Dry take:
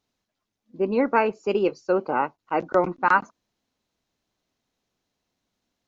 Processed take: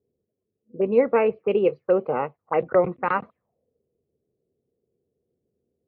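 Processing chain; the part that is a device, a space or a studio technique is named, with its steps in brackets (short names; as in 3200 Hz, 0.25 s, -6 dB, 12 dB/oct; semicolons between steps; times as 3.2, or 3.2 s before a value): envelope filter bass rig (envelope low-pass 390–3800 Hz up, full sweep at -21 dBFS; speaker cabinet 63–2200 Hz, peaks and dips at 84 Hz +9 dB, 140 Hz +7 dB, 300 Hz -7 dB, 480 Hz +8 dB, 930 Hz -7 dB, 1500 Hz -10 dB)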